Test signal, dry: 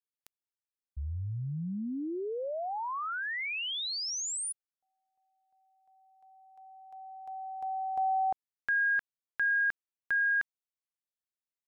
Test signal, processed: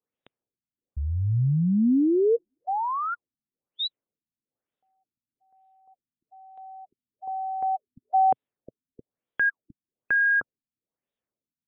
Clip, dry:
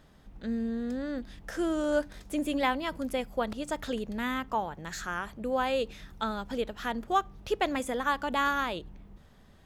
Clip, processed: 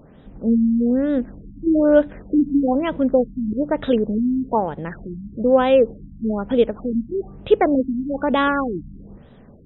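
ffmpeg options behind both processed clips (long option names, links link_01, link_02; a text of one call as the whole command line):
ffmpeg -i in.wav -af "equalizer=frequency=125:width_type=o:width=1:gain=6,equalizer=frequency=250:width_type=o:width=1:gain=7,equalizer=frequency=500:width_type=o:width=1:gain=9,equalizer=frequency=4000:width_type=o:width=1:gain=3,afftfilt=real='re*lt(b*sr/1024,280*pow(4000/280,0.5+0.5*sin(2*PI*1.1*pts/sr)))':imag='im*lt(b*sr/1024,280*pow(4000/280,0.5+0.5*sin(2*PI*1.1*pts/sr)))':win_size=1024:overlap=0.75,volume=5.5dB" out.wav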